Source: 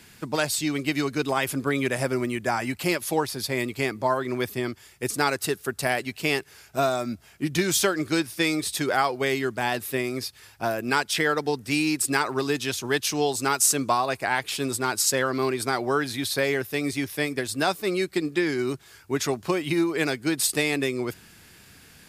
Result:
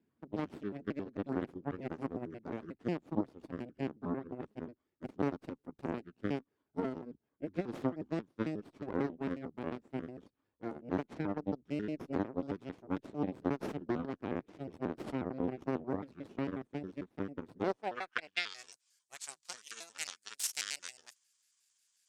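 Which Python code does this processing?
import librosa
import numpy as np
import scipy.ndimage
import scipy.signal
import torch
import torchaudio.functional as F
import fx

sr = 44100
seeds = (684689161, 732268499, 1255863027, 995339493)

y = fx.pitch_trill(x, sr, semitones=-7.0, every_ms=90)
y = fx.cheby_harmonics(y, sr, harmonics=(3, 4, 5, 7), levels_db=(-12, -7, -33, -34), full_scale_db=-7.5)
y = fx.filter_sweep_bandpass(y, sr, from_hz=280.0, to_hz=7100.0, start_s=17.57, end_s=18.63, q=1.7)
y = y * 10.0 ** (-3.0 / 20.0)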